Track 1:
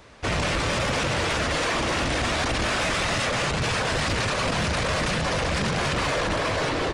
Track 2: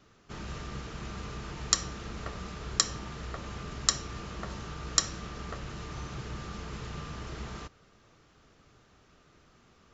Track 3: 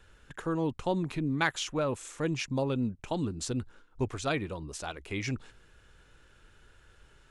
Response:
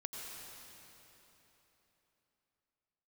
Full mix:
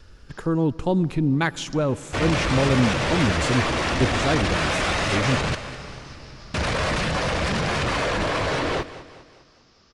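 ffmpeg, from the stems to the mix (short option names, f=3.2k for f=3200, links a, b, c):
-filter_complex "[0:a]highshelf=f=7.1k:g=-6.5,adelay=1900,volume=-1.5dB,asplit=3[a][b][c];[a]atrim=end=5.55,asetpts=PTS-STARTPTS,afade=t=out:st=5.546:d=0.004:c=hsin[d];[b]atrim=start=5.55:end=6.54,asetpts=PTS-STARTPTS,volume=0[e];[c]atrim=start=6.54,asetpts=PTS-STARTPTS,afade=t=in:d=0.004:c=hsin[f];[d][e][f]concat=n=3:v=0:a=1,asplit=3[g][h][i];[h]volume=-5.5dB[j];[i]volume=-12.5dB[k];[1:a]acompressor=threshold=-41dB:ratio=6,lowpass=f=5.1k:t=q:w=5.4,volume=1dB[l];[2:a]lowshelf=f=440:g=9.5,volume=1.5dB,asplit=3[m][n][o];[n]volume=-14dB[p];[o]apad=whole_len=438067[q];[l][q]sidechaincompress=threshold=-47dB:ratio=3:attack=7.7:release=306[r];[3:a]atrim=start_sample=2205[s];[j][p]amix=inputs=2:normalize=0[t];[t][s]afir=irnorm=-1:irlink=0[u];[k]aecho=0:1:202|404|606|808|1010|1212|1414:1|0.47|0.221|0.104|0.0488|0.0229|0.0108[v];[g][r][m][u][v]amix=inputs=5:normalize=0"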